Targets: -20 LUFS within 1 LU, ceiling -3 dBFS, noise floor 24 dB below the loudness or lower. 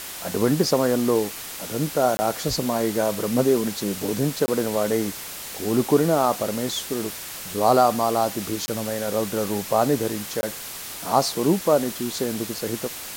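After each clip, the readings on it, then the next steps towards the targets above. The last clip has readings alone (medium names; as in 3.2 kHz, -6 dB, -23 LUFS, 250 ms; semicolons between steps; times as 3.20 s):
dropouts 4; longest dropout 20 ms; noise floor -35 dBFS; noise floor target -48 dBFS; loudness -23.5 LUFS; peak level -4.0 dBFS; loudness target -20.0 LUFS
-> interpolate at 2.17/4.46/8.66/10.41 s, 20 ms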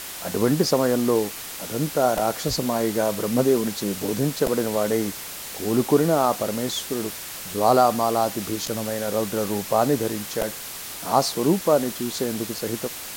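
dropouts 0; noise floor -35 dBFS; noise floor target -48 dBFS
-> noise reduction 13 dB, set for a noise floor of -35 dBFS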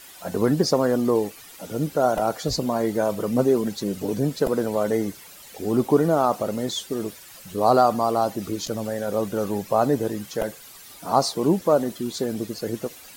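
noise floor -45 dBFS; noise floor target -48 dBFS
-> noise reduction 6 dB, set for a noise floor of -45 dBFS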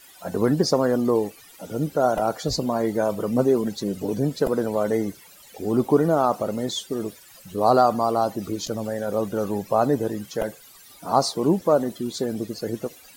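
noise floor -49 dBFS; loudness -23.5 LUFS; peak level -4.0 dBFS; loudness target -20.0 LUFS
-> trim +3.5 dB; peak limiter -3 dBFS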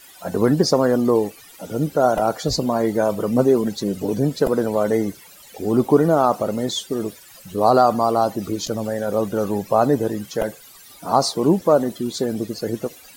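loudness -20.5 LUFS; peak level -3.0 dBFS; noise floor -45 dBFS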